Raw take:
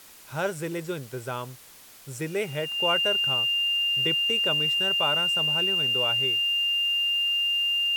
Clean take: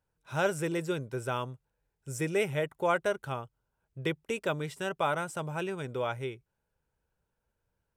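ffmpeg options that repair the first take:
-af "bandreject=f=2.8k:w=30,afwtdn=0.0035"

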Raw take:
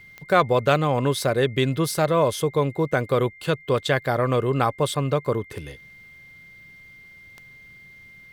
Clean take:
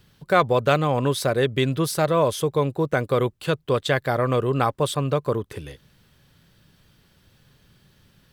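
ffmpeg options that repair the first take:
-af "adeclick=t=4,bandreject=f=2.1k:w=30"

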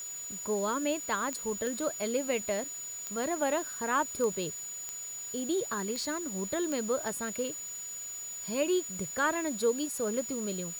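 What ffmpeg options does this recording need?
-af "adeclick=t=4,bandreject=f=6.9k:w=30,afwtdn=0.0028"

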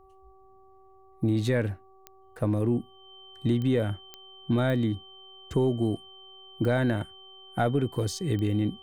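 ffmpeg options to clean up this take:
-af "adeclick=t=4,bandreject=f=382.6:t=h:w=4,bandreject=f=765.2:t=h:w=4,bandreject=f=1.1478k:t=h:w=4,bandreject=f=3.1k:w=30"

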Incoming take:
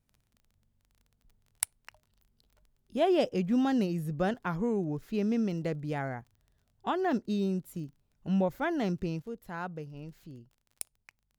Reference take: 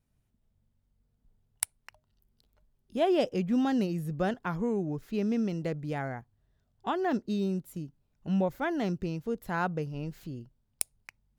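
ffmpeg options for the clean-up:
-af "adeclick=t=4,asetnsamples=n=441:p=0,asendcmd='9.22 volume volume 7.5dB',volume=0dB"

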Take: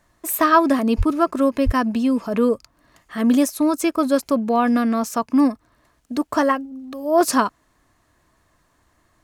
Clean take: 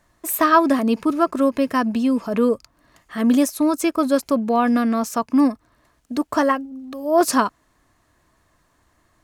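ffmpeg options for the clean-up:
-filter_complex "[0:a]asplit=3[a][b][c];[a]afade=t=out:st=0.97:d=0.02[d];[b]highpass=f=140:w=0.5412,highpass=f=140:w=1.3066,afade=t=in:st=0.97:d=0.02,afade=t=out:st=1.09:d=0.02[e];[c]afade=t=in:st=1.09:d=0.02[f];[d][e][f]amix=inputs=3:normalize=0,asplit=3[g][h][i];[g]afade=t=out:st=1.65:d=0.02[j];[h]highpass=f=140:w=0.5412,highpass=f=140:w=1.3066,afade=t=in:st=1.65:d=0.02,afade=t=out:st=1.77:d=0.02[k];[i]afade=t=in:st=1.77:d=0.02[l];[j][k][l]amix=inputs=3:normalize=0"

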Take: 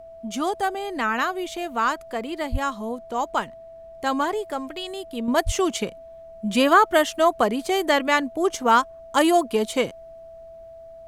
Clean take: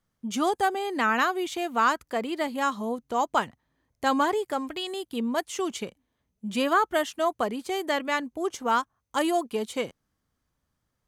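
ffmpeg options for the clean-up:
-filter_complex "[0:a]bandreject=f=660:w=30,asplit=3[a][b][c];[a]afade=t=out:st=2.51:d=0.02[d];[b]highpass=f=140:w=0.5412,highpass=f=140:w=1.3066,afade=t=in:st=2.51:d=0.02,afade=t=out:st=2.63:d=0.02[e];[c]afade=t=in:st=2.63:d=0.02[f];[d][e][f]amix=inputs=3:normalize=0,asplit=3[g][h][i];[g]afade=t=out:st=5.45:d=0.02[j];[h]highpass=f=140:w=0.5412,highpass=f=140:w=1.3066,afade=t=in:st=5.45:d=0.02,afade=t=out:st=5.57:d=0.02[k];[i]afade=t=in:st=5.57:d=0.02[l];[j][k][l]amix=inputs=3:normalize=0,agate=range=-21dB:threshold=-35dB,asetnsamples=n=441:p=0,asendcmd='5.28 volume volume -7dB',volume=0dB"

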